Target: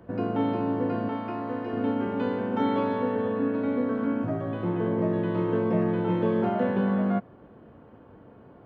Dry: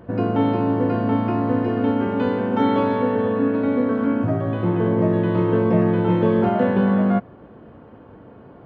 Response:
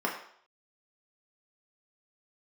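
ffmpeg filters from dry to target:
-filter_complex "[0:a]asettb=1/sr,asplit=3[s0][s1][s2];[s0]atrim=end=1.084[s3];[s1]atrim=start=1.08:end=1.73,asetpts=PTS-STARTPTS,afade=t=in:d=0.004:c=qsin,afade=t=out:st=0.646:d=0.004:c=qsin,lowshelf=f=280:g=-11[s4];[s2]atrim=start=1.726[s5];[s3][s4]acrossfade=d=0.004:c1=hsin:c2=qsin[s6];[s6][s5]acrossfade=d=0.004:c1=qsin:c2=hsin,acrossover=split=110|670[s7][s8][s9];[s7]acompressor=threshold=0.00631:ratio=6[s10];[s10][s8][s9]amix=inputs=3:normalize=0,volume=0.473"

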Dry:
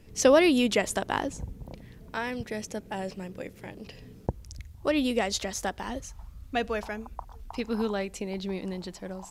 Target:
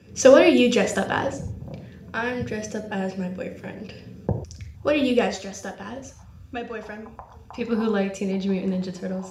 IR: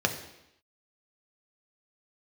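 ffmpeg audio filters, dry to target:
-filter_complex "[0:a]asettb=1/sr,asplit=3[s0][s1][s2];[s0]atrim=end=5.274[s3];[s1]atrim=start=5.27:end=7.61,asetpts=PTS-STARTPTS,afade=t=in:d=0.004:c=qsin,afade=t=out:st=2.336:d=0.004:c=qsin,acompressor=threshold=0.0112:ratio=2.5[s4];[s2]atrim=start=7.606[s5];[s3][s4]acrossfade=d=0.004:c1=hsin:c2=qsin[s6];[s6][s5]acrossfade=d=0.004:c1=qsin:c2=hsin[s7];[1:a]atrim=start_sample=2205,atrim=end_sample=6615[s8];[s7][s8]afir=irnorm=-1:irlink=0,volume=0.531"

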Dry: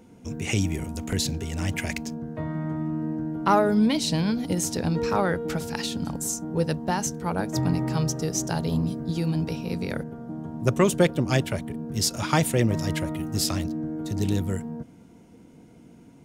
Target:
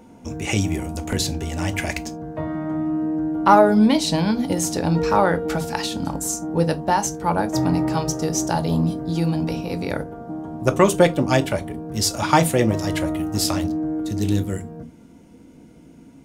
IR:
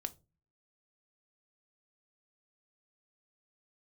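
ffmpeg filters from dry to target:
-filter_complex "[0:a]asetnsamples=n=441:p=0,asendcmd='14 equalizer g -2',equalizer=f=840:w=1.3:g=6[s0];[1:a]atrim=start_sample=2205,atrim=end_sample=3969[s1];[s0][s1]afir=irnorm=-1:irlink=0,volume=1.78"

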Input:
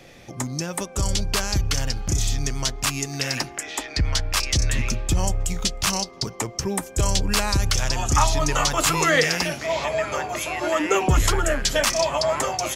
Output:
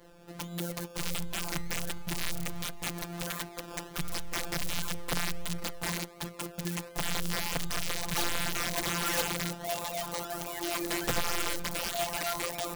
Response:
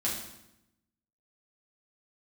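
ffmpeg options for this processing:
-af "acrusher=samples=17:mix=1:aa=0.000001:lfo=1:lforange=10.2:lforate=1.4,afftfilt=real='hypot(re,im)*cos(PI*b)':imag='0':win_size=1024:overlap=0.75,aeval=exprs='(mod(6.68*val(0)+1,2)-1)/6.68':c=same,volume=0.562"

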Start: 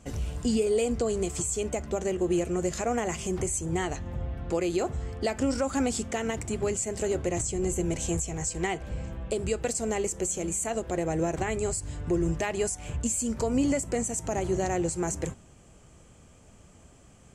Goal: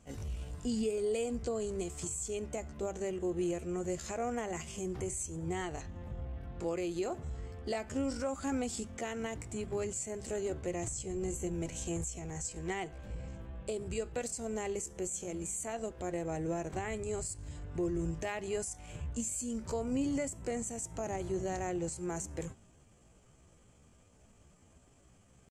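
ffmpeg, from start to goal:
-af "atempo=0.68,volume=0.398"

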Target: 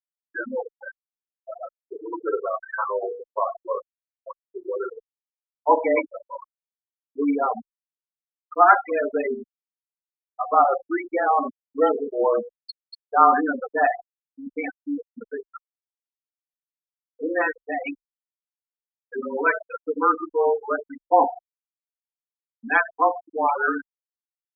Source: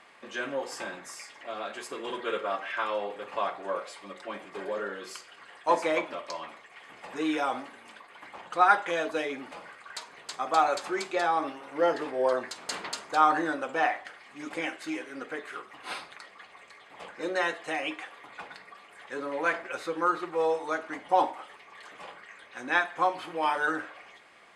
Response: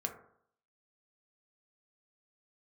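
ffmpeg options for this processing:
-filter_complex "[0:a]asplit=2[s0][s1];[1:a]atrim=start_sample=2205,lowshelf=f=200:g=7[s2];[s1][s2]afir=irnorm=-1:irlink=0,volume=0.447[s3];[s0][s3]amix=inputs=2:normalize=0,afftfilt=real='re*gte(hypot(re,im),0.141)':imag='im*gte(hypot(re,im),0.141)':win_size=1024:overlap=0.75,afreqshift=-27,volume=1.5"

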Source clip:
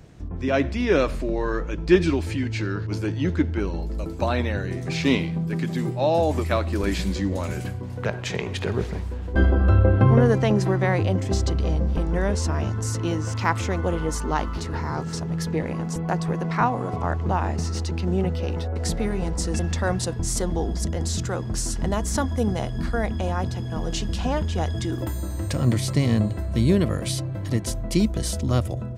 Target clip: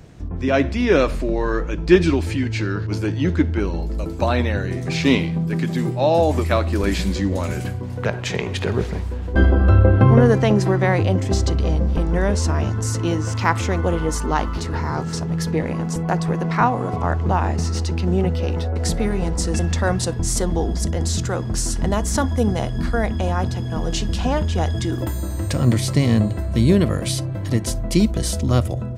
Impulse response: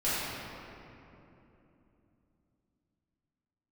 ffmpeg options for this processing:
-filter_complex "[0:a]asplit=2[s0][s1];[1:a]atrim=start_sample=2205,atrim=end_sample=3087[s2];[s1][s2]afir=irnorm=-1:irlink=0,volume=0.0562[s3];[s0][s3]amix=inputs=2:normalize=0,volume=1.5"

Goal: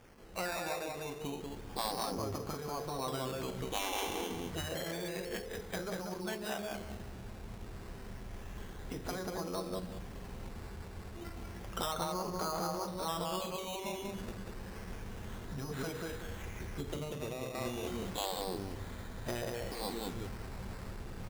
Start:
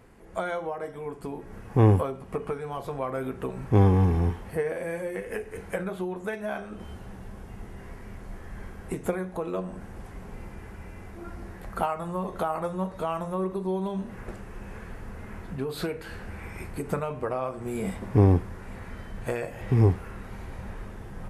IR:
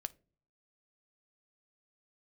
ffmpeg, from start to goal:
-filter_complex "[0:a]highshelf=f=5500:g=-7,aecho=1:1:189|378|567:0.631|0.158|0.0394,asettb=1/sr,asplit=3[s0][s1][s2];[s0]atrim=end=16.434[s3];[s1]atrim=start=16.43:end=17.55,asetpts=PTS-STARTPTS,afade=t=in:d=0.004:c=qsin,afade=t=out:st=1.116:d=0.004:c=qsin,acrossover=split=440[s4][s5];[s5]acompressor=threshold=0.00891:ratio=6[s6];[s4][s6]amix=inputs=2:normalize=0[s7];[s2]atrim=start=17.546[s8];[s3][s7]acrossfade=d=0.004:c1=hsin:c2=qsin[s9];[s9][s8]acrossfade=d=0.004:c1=qsin:c2=hsin,acrusher=samples=11:mix=1:aa=0.000001:lfo=1:lforange=6.6:lforate=0.3,afftfilt=real='re*lt(hypot(re,im),0.251)':imag='im*lt(hypot(re,im),0.251)':win_size=1024:overlap=0.75,acrusher=bits=8:mix=0:aa=0.000001,volume=0.531"

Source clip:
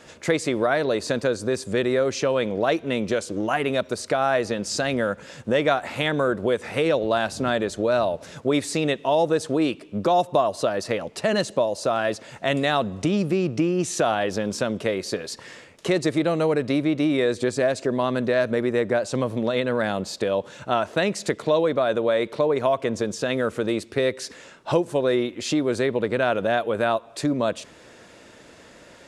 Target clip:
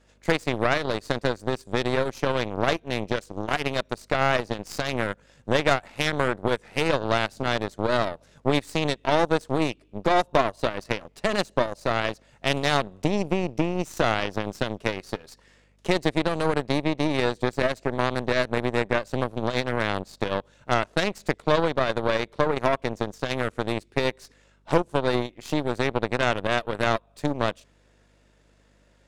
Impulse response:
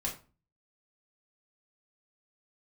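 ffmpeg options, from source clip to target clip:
-af "aeval=exprs='val(0)+0.00562*(sin(2*PI*50*n/s)+sin(2*PI*2*50*n/s)/2+sin(2*PI*3*50*n/s)/3+sin(2*PI*4*50*n/s)/4+sin(2*PI*5*50*n/s)/5)':c=same,aeval=exprs='0.473*(cos(1*acos(clip(val(0)/0.473,-1,1)))-cos(1*PI/2))+0.0237*(cos(3*acos(clip(val(0)/0.473,-1,1)))-cos(3*PI/2))+0.0596*(cos(4*acos(clip(val(0)/0.473,-1,1)))-cos(4*PI/2))+0.0473*(cos(7*acos(clip(val(0)/0.473,-1,1)))-cos(7*PI/2))':c=same"

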